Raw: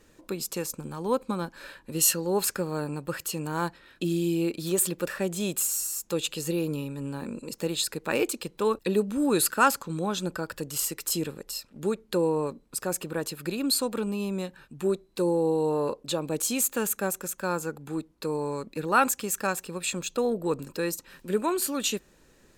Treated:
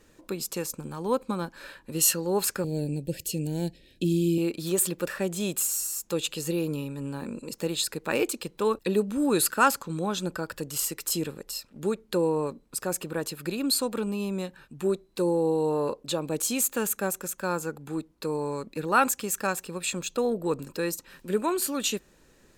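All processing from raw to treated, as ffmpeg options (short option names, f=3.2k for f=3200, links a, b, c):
-filter_complex "[0:a]asettb=1/sr,asplit=3[a][b][c];[a]atrim=end=2.644[d];[b]atrim=start=2.64:end=4.38,asetpts=PTS-STARTPTS,afade=t=in:d=0.004:c=qsin,afade=t=out:st=1.736:d=0.004:c=qsin,asuperstop=centerf=1200:order=4:qfactor=0.61,lowshelf=f=190:g=7.5[e];[c]atrim=start=4.376[f];[d][e]acrossfade=d=0.004:c1=hsin:c2=qsin[g];[g][f]acrossfade=d=0.004:c1=qsin:c2=hsin"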